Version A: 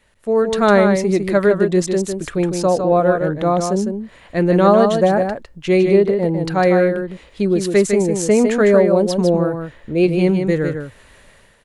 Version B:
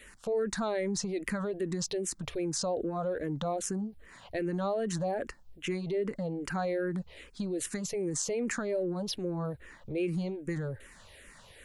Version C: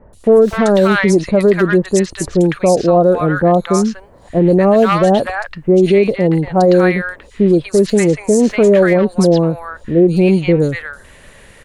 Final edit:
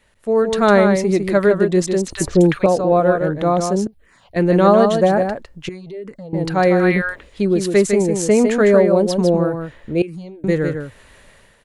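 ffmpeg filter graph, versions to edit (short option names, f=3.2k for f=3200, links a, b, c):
-filter_complex "[2:a]asplit=2[a][b];[1:a]asplit=3[c][d][e];[0:a]asplit=6[f][g][h][i][j][k];[f]atrim=end=2.082[l];[a]atrim=start=2.078:end=2.662[m];[g]atrim=start=2.658:end=3.872[n];[c]atrim=start=3.868:end=4.362[o];[h]atrim=start=4.358:end=5.692[p];[d]atrim=start=5.688:end=6.332[q];[i]atrim=start=6.328:end=6.95[r];[b]atrim=start=6.71:end=7.38[s];[j]atrim=start=7.14:end=10.022[t];[e]atrim=start=10.018:end=10.442[u];[k]atrim=start=10.438[v];[l][m]acrossfade=d=0.004:c1=hsin:c2=hsin[w];[w][n]acrossfade=d=0.004:c1=hsin:c2=hsin[x];[x][o]acrossfade=d=0.004:c1=hsin:c2=hsin[y];[y][p]acrossfade=d=0.004:c1=hsin:c2=hsin[z];[z][q]acrossfade=d=0.004:c1=hsin:c2=hsin[aa];[aa][r]acrossfade=d=0.004:c1=hsin:c2=hsin[ab];[ab][s]acrossfade=d=0.24:c1=tri:c2=tri[ac];[ac][t]acrossfade=d=0.24:c1=tri:c2=tri[ad];[ad][u]acrossfade=d=0.004:c1=hsin:c2=hsin[ae];[ae][v]acrossfade=d=0.004:c1=hsin:c2=hsin"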